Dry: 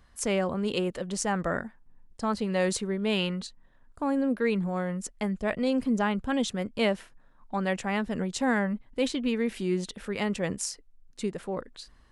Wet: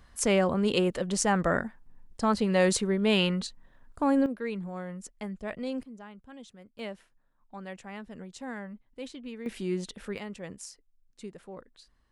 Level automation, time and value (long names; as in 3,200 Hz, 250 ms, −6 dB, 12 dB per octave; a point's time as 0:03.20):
+3 dB
from 0:04.26 −7.5 dB
from 0:05.83 −20 dB
from 0:06.79 −13 dB
from 0:09.46 −3 dB
from 0:10.18 −11 dB